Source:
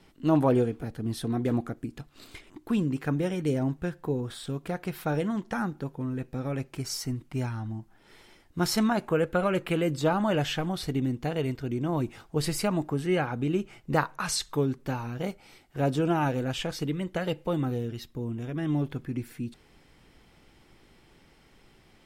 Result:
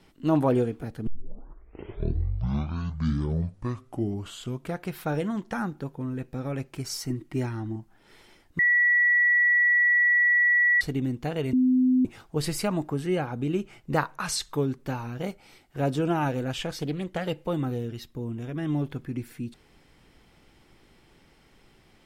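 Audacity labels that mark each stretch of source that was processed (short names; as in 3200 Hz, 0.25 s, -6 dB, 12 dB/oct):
1.070000	1.070000	tape start 3.77 s
7.100000	7.760000	small resonant body resonances 330/1900 Hz, height 12 dB
8.590000	10.810000	bleep 1940 Hz -17.5 dBFS
11.530000	12.050000	bleep 255 Hz -17.5 dBFS
13.050000	13.490000	dynamic EQ 1800 Hz, up to -5 dB, over -40 dBFS, Q 0.76
16.770000	17.250000	Doppler distortion depth 0.25 ms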